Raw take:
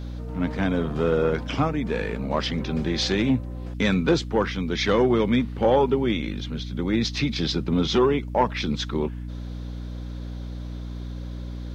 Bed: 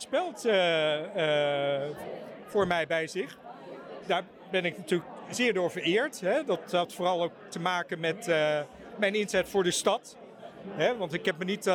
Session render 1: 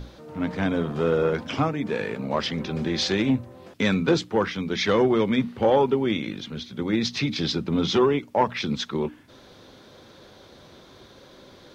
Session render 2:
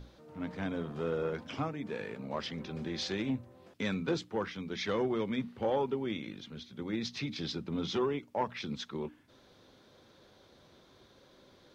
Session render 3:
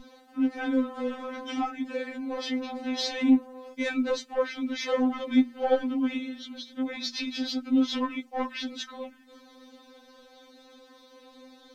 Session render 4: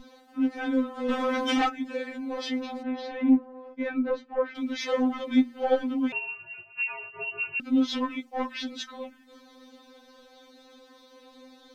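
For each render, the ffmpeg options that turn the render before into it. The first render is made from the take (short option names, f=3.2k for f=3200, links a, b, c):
-af "bandreject=f=60:t=h:w=6,bandreject=f=120:t=h:w=6,bandreject=f=180:t=h:w=6,bandreject=f=240:t=h:w=6,bandreject=f=300:t=h:w=6"
-af "volume=-11.5dB"
-af "aeval=exprs='0.126*sin(PI/2*1.78*val(0)/0.126)':c=same,afftfilt=real='re*3.46*eq(mod(b,12),0)':imag='im*3.46*eq(mod(b,12),0)':win_size=2048:overlap=0.75"
-filter_complex "[0:a]asplit=3[a][b][c];[a]afade=t=out:st=1.08:d=0.02[d];[b]aeval=exprs='0.1*sin(PI/2*2.24*val(0)/0.1)':c=same,afade=t=in:st=1.08:d=0.02,afade=t=out:st=1.68:d=0.02[e];[c]afade=t=in:st=1.68:d=0.02[f];[d][e][f]amix=inputs=3:normalize=0,asplit=3[g][h][i];[g]afade=t=out:st=2.82:d=0.02[j];[h]lowpass=1.6k,afade=t=in:st=2.82:d=0.02,afade=t=out:st=4.54:d=0.02[k];[i]afade=t=in:st=4.54:d=0.02[l];[j][k][l]amix=inputs=3:normalize=0,asettb=1/sr,asplit=3[m][n][o];[m]atrim=end=6.124[p];[n]atrim=start=6.12:end=7.6,asetpts=PTS-STARTPTS,afade=t=in:d=0.004:c=qsin,afade=t=out:st=1.476:d=0.004:c=qsin,lowpass=f=2.6k:t=q:w=0.5098,lowpass=f=2.6k:t=q:w=0.6013,lowpass=f=2.6k:t=q:w=0.9,lowpass=f=2.6k:t=q:w=2.563,afreqshift=-3000[q];[o]atrim=start=7.596[r];[p][q]acrossfade=d=0.004:c1=hsin:c2=qsin[s];[s][r]acrossfade=d=0.004:c1=qsin:c2=hsin"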